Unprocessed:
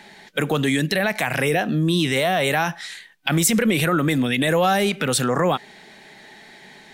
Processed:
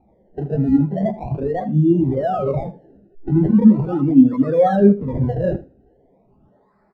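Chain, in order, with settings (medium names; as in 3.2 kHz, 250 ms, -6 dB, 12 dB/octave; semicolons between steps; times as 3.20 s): jump at every zero crossing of -28 dBFS; in parallel at +1 dB: level held to a coarse grid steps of 12 dB; on the sum: decimation with a swept rate 27×, swing 100% 0.4 Hz; doubling 15 ms -10.5 dB; on a send: feedback delay 79 ms, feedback 37%, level -7 dB; on the sum: spectral contrast expander 2.5:1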